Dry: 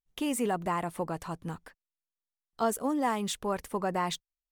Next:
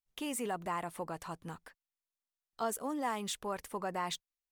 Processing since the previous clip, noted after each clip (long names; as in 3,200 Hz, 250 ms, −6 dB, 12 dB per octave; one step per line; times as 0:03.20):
in parallel at −3 dB: brickwall limiter −26.5 dBFS, peak gain reduction 8.5 dB
on the sum: low-shelf EQ 450 Hz −6.5 dB
level −7 dB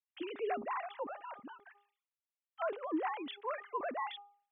three sine waves on the formant tracks
hum removal 406.2 Hz, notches 3
level that may fall only so fast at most 130 dB per second
level −1.5 dB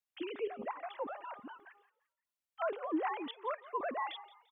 gate pattern "xxxx.x.xxxxx" 127 BPM −12 dB
echo with shifted repeats 172 ms, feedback 35%, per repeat +70 Hz, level −19 dB
level +1 dB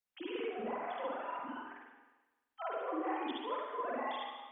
downward compressor, threshold −39 dBFS, peak gain reduction 9.5 dB
spring reverb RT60 1.1 s, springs 44/48 ms, chirp 75 ms, DRR −6.5 dB
level −2.5 dB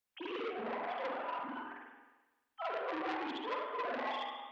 saturating transformer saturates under 1,800 Hz
level +2.5 dB